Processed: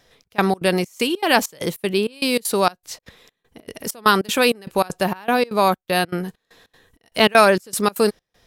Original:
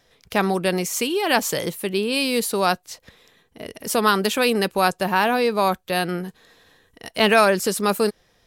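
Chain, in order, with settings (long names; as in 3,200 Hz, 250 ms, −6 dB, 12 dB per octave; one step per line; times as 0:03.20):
gate pattern "xxx..xx." 196 BPM −24 dB
level +3 dB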